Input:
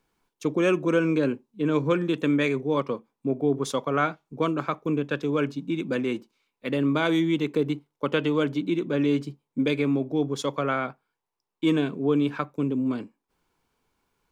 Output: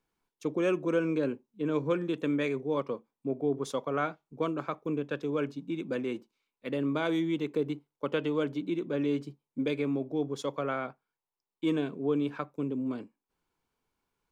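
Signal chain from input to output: dynamic bell 530 Hz, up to +4 dB, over -36 dBFS, Q 0.8; trim -8.5 dB

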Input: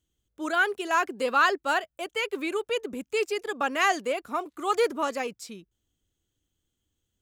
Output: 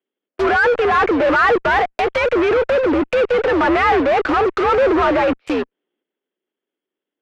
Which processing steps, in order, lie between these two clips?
transient shaper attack -5 dB, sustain +6 dB; mistuned SSB +74 Hz 190–2700 Hz; in parallel at -3 dB: fuzz box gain 49 dB, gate -49 dBFS; on the sum: low-pass that closes with the level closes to 2.1 kHz, closed at -15 dBFS; trim +1 dB

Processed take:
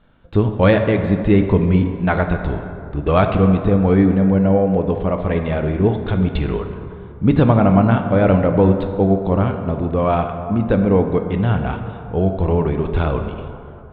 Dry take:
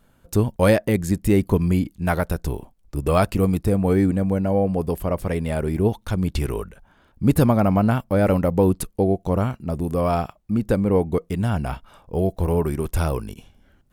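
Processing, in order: elliptic low-pass 3.7 kHz, stop band 40 dB; plate-style reverb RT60 2.7 s, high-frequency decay 0.45×, DRR 5.5 dB; trim +4 dB

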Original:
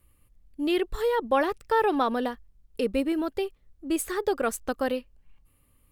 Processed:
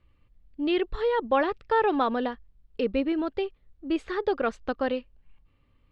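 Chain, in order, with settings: low-pass 4.2 kHz 24 dB/octave

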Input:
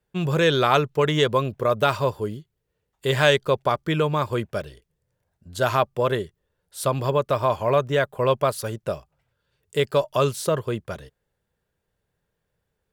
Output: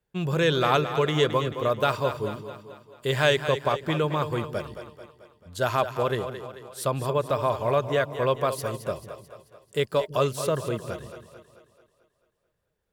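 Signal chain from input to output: two-band feedback delay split 320 Hz, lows 160 ms, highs 219 ms, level -10 dB; trim -3.5 dB

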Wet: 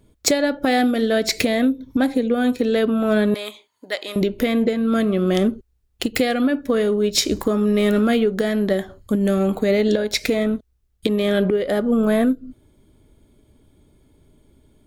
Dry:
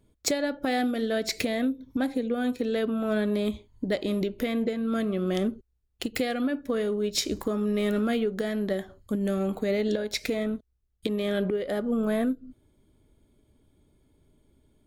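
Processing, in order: 3.34–4.16 s: high-pass 880 Hz 12 dB/octave; trim +8.5 dB

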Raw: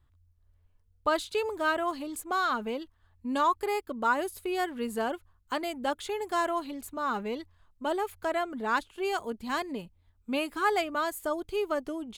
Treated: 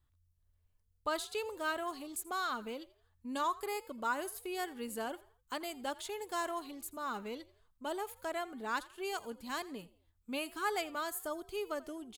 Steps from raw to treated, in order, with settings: treble shelf 4.2 kHz +10 dB; on a send: frequency-shifting echo 84 ms, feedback 38%, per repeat +49 Hz, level -20 dB; on the sum: trim -9 dB

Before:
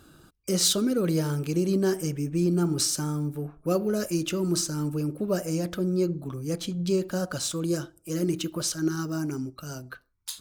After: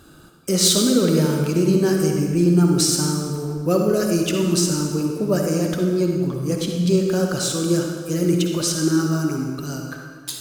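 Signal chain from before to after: on a send: high-pass 110 Hz 12 dB/octave + reverberation RT60 1.8 s, pre-delay 47 ms, DRR 1.5 dB; on the sum: trim +5.5 dB

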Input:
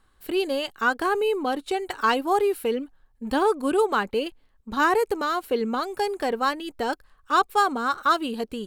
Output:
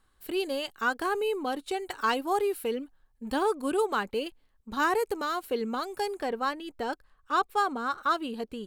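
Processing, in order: treble shelf 4.5 kHz +4 dB, from 6.20 s -4 dB; trim -5.5 dB

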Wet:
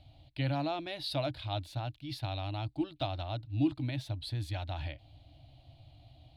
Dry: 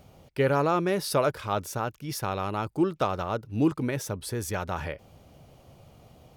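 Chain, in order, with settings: FFT filter 130 Hz 0 dB, 190 Hz -26 dB, 300 Hz -1 dB, 420 Hz -30 dB, 680 Hz -4 dB, 1.2 kHz -20 dB, 4.1 kHz +5 dB, 5.8 kHz -21 dB, 9.6 kHz -18 dB, 15 kHz -25 dB

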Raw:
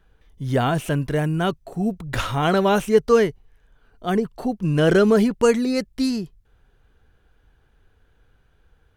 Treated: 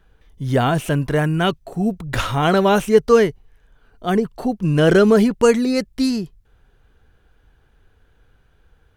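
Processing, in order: 1.01–1.58 s: peaking EQ 750 Hz -> 3.5 kHz +6 dB 0.97 oct; trim +3 dB

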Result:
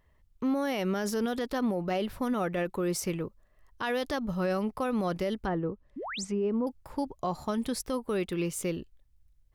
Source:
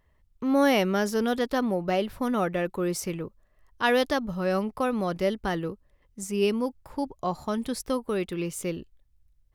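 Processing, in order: peak limiter -21.5 dBFS, peak gain reduction 11 dB; 5.45–6.67 s: low-pass that closes with the level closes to 1.1 kHz, closed at -27 dBFS; 5.96–6.25 s: painted sound rise 220–9100 Hz -37 dBFS

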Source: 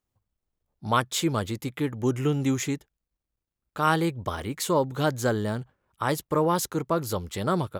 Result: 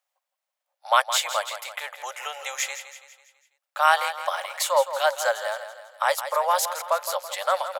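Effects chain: rippled Chebyshev high-pass 540 Hz, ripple 3 dB; feedback delay 165 ms, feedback 47%, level -11 dB; trim +7 dB

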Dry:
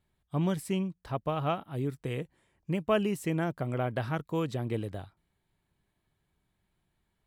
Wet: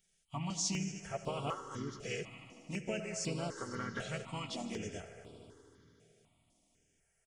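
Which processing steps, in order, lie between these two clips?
knee-point frequency compression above 2.6 kHz 1.5:1; comb 4.4 ms, depth 50%; compression 4:1, threshold -29 dBFS, peak gain reduction 9 dB; harmony voices -3 st -5 dB; pre-emphasis filter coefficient 0.9; multi-head delay 76 ms, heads all three, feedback 71%, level -19 dB; on a send at -14 dB: reverberation RT60 2.9 s, pre-delay 30 ms; on the sum: stepped phaser 4 Hz 270–6300 Hz; trim +13 dB

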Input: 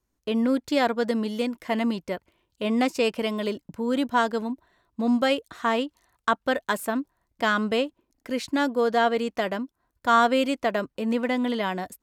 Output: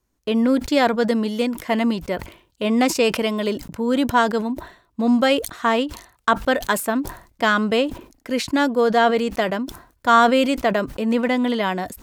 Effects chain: decay stretcher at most 120 dB/s; trim +5 dB

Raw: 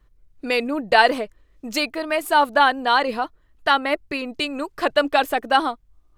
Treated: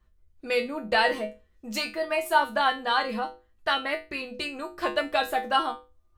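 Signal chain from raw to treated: bass shelf 150 Hz +3.5 dB; hum notches 50/100/150/200/250/300/350/400/450/500 Hz; feedback comb 71 Hz, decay 0.26 s, harmonics odd, mix 90%; trim +4 dB

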